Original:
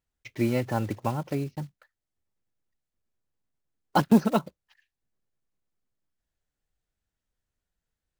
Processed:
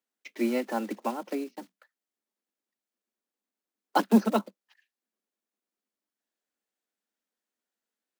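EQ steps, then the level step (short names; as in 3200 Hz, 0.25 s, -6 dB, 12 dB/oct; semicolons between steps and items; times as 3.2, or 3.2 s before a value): steep high-pass 200 Hz 96 dB/oct; -1.0 dB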